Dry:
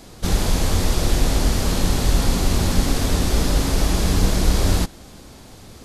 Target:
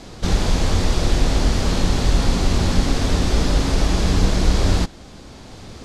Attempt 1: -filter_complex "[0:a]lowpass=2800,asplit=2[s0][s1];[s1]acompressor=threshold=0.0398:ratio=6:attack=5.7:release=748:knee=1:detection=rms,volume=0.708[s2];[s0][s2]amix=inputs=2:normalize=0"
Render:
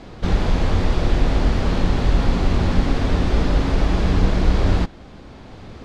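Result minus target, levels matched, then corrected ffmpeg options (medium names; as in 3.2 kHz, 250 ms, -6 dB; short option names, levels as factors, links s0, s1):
8 kHz band -12.0 dB
-filter_complex "[0:a]lowpass=6400,asplit=2[s0][s1];[s1]acompressor=threshold=0.0398:ratio=6:attack=5.7:release=748:knee=1:detection=rms,volume=0.708[s2];[s0][s2]amix=inputs=2:normalize=0"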